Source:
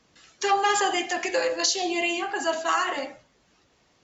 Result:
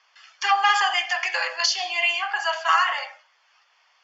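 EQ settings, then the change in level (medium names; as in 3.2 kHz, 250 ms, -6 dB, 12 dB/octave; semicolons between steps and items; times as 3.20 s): inverse Chebyshev high-pass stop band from 190 Hz, stop band 70 dB; Butterworth band-stop 3.9 kHz, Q 6.5; low-pass 5 kHz 24 dB/octave; +6.0 dB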